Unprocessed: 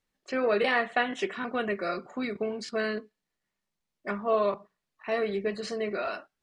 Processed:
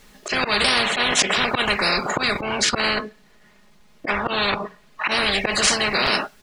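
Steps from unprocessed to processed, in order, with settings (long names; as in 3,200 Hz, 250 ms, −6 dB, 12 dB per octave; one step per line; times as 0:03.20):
0:02.42–0:05.11: high-shelf EQ 5,500 Hz −11.5 dB
comb filter 4.8 ms, depth 46%
dynamic equaliser 500 Hz, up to +6 dB, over −39 dBFS, Q 1.8
volume swells 126 ms
every bin compressed towards the loudest bin 10 to 1
level +6 dB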